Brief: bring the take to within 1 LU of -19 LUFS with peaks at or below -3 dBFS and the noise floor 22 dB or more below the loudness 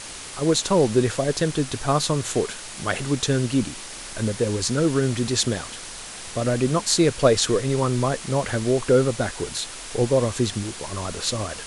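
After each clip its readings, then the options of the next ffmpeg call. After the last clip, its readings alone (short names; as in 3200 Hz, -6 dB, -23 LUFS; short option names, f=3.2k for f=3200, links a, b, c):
noise floor -37 dBFS; noise floor target -45 dBFS; loudness -23.0 LUFS; peak -5.0 dBFS; loudness target -19.0 LUFS
-> -af "afftdn=nr=8:nf=-37"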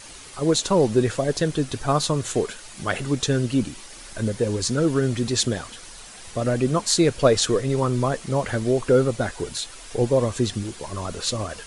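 noise floor -42 dBFS; noise floor target -45 dBFS
-> -af "afftdn=nr=6:nf=-42"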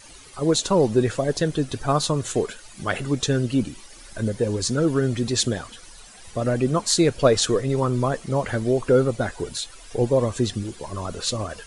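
noise floor -45 dBFS; loudness -23.0 LUFS; peak -5.0 dBFS; loudness target -19.0 LUFS
-> -af "volume=4dB,alimiter=limit=-3dB:level=0:latency=1"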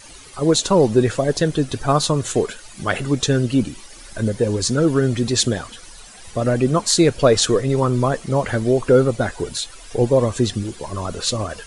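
loudness -19.0 LUFS; peak -3.0 dBFS; noise floor -41 dBFS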